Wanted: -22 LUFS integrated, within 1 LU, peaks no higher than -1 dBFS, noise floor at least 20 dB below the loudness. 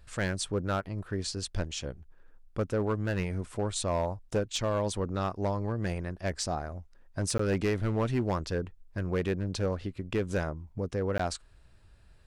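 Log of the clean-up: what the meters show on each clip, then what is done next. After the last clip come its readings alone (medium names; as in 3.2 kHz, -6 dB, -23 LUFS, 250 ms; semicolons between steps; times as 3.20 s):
clipped samples 1.5%; clipping level -22.5 dBFS; dropouts 2; longest dropout 14 ms; loudness -32.5 LUFS; peak level -22.5 dBFS; loudness target -22.0 LUFS
-> clip repair -22.5 dBFS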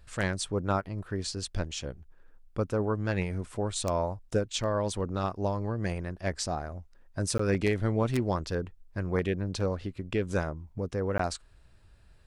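clipped samples 0.0%; dropouts 2; longest dropout 14 ms
-> interpolate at 7.38/11.18 s, 14 ms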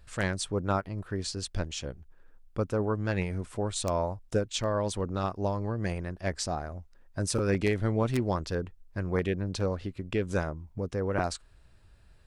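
dropouts 0; loudness -31.5 LUFS; peak level -13.5 dBFS; loudness target -22.0 LUFS
-> trim +9.5 dB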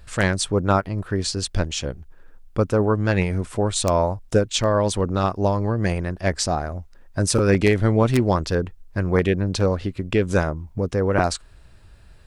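loudness -22.0 LUFS; peak level -4.0 dBFS; noise floor -49 dBFS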